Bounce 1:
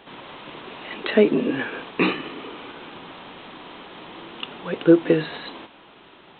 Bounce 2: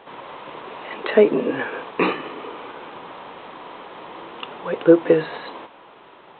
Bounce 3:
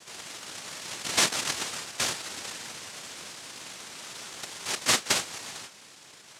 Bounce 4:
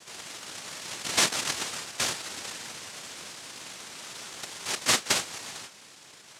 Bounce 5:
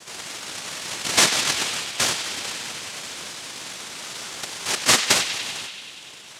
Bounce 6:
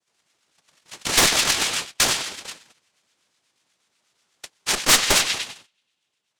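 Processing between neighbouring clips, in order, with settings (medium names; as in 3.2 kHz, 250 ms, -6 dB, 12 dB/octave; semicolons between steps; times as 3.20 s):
graphic EQ 125/500/1000/2000 Hz +3/+9/+9/+4 dB; trim -5.5 dB
compression 1.5:1, threshold -28 dBFS, peak gain reduction 8 dB; flange 0.32 Hz, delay 8.1 ms, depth 1.2 ms, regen -70%; noise-vocoded speech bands 1
no audible change
band-passed feedback delay 96 ms, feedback 81%, band-pass 3 kHz, level -8 dB; trim +6.5 dB
Chebyshev shaper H 4 -7 dB, 5 -9 dB, 8 -23 dB, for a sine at -1 dBFS; gate -19 dBFS, range -37 dB; harmonic tremolo 8.2 Hz, depth 50%, crossover 1.2 kHz; trim -4 dB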